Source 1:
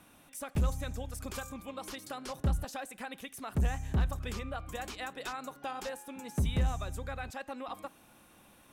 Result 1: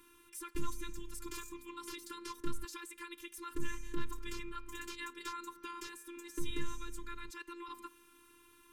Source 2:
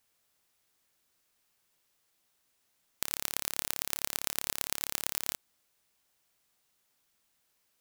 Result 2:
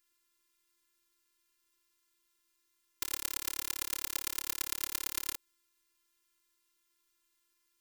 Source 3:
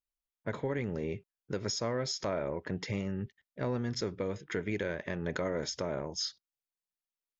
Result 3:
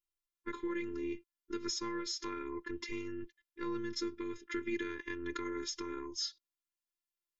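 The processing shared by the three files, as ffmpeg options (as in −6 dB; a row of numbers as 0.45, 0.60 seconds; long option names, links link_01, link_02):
-af "afftfilt=real='hypot(re,im)*cos(PI*b)':imag='0':win_size=512:overlap=0.75,asuperstop=centerf=670:order=8:qfactor=2.4,volume=1dB"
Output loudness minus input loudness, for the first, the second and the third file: −8.5, −2.0, −4.5 LU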